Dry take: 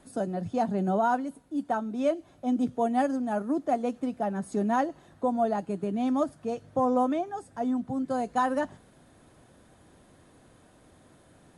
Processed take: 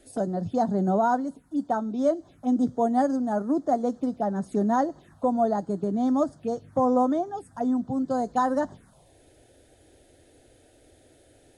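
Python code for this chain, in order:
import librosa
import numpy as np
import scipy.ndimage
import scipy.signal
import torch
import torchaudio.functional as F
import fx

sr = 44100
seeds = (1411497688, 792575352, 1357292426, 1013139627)

y = fx.env_phaser(x, sr, low_hz=160.0, high_hz=2600.0, full_db=-28.0)
y = F.gain(torch.from_numpy(y), 3.5).numpy()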